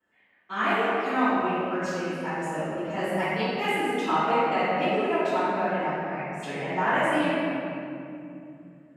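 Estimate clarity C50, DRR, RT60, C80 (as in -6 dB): -5.5 dB, -19.0 dB, 2.6 s, -3.0 dB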